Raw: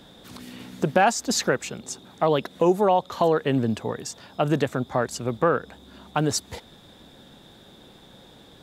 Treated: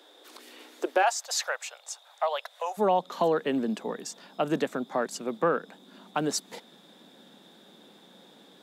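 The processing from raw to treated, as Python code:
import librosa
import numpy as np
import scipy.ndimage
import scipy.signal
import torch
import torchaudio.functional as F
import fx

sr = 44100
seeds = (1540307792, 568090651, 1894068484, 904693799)

y = fx.steep_highpass(x, sr, hz=fx.steps((0.0, 310.0), (1.02, 580.0), (2.77, 170.0)), slope=48)
y = F.gain(torch.from_numpy(y), -4.0).numpy()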